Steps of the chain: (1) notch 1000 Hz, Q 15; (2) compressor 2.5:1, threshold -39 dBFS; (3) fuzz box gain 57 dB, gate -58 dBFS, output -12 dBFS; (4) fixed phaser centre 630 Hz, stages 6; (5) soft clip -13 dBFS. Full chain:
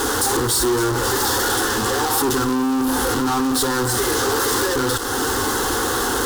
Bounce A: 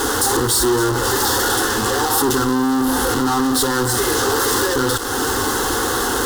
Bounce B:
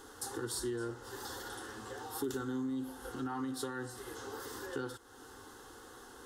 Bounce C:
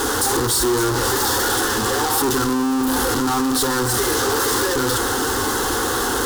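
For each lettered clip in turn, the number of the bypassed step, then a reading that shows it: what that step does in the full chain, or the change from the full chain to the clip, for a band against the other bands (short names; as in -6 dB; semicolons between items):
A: 5, distortion -18 dB; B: 3, distortion -2 dB; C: 2, mean gain reduction 7.0 dB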